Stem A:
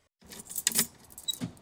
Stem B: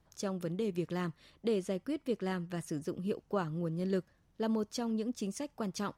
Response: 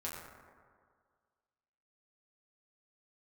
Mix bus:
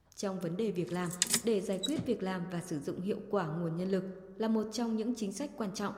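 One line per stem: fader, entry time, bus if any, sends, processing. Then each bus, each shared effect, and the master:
−4.0 dB, 0.55 s, send −17.5 dB, low-pass filter 10,000 Hz 12 dB per octave; multiband upward and downward expander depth 40%
−1.5 dB, 0.00 s, send −6.5 dB, no processing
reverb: on, RT60 1.9 s, pre-delay 6 ms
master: no processing

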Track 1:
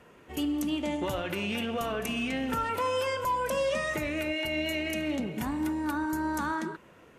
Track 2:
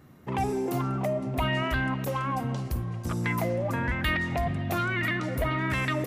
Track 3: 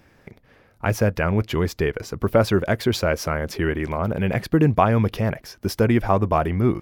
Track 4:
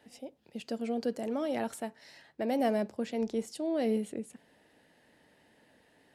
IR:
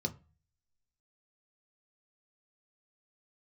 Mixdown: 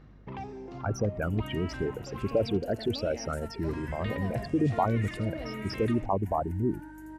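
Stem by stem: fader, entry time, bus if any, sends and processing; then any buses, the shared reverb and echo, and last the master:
−16.0 dB, 0.85 s, no send, echo send −5 dB, phaser with its sweep stopped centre 780 Hz, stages 8
−2.5 dB, 0.00 s, muted 0:02.57–0:03.64, no send, no echo send, inverse Chebyshev low-pass filter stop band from 9,700 Hz, stop band 40 dB; automatic ducking −11 dB, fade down 0.50 s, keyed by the third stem
−9.0 dB, 0.00 s, no send, no echo send, spectral envelope exaggerated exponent 3
−7.0 dB, 1.60 s, no send, echo send −11.5 dB, brickwall limiter −26.5 dBFS, peak gain reduction 8.5 dB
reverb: not used
echo: single-tap delay 83 ms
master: mains hum 50 Hz, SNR 23 dB

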